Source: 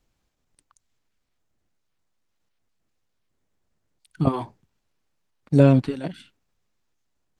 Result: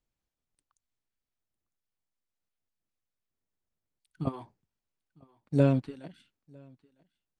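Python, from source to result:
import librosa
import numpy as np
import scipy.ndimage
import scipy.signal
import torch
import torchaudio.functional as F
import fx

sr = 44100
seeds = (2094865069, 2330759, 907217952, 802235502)

y = x + 10.0 ** (-23.0 / 20.0) * np.pad(x, (int(954 * sr / 1000.0), 0))[:len(x)]
y = fx.upward_expand(y, sr, threshold_db=-25.0, expansion=1.5)
y = F.gain(torch.from_numpy(y), -7.5).numpy()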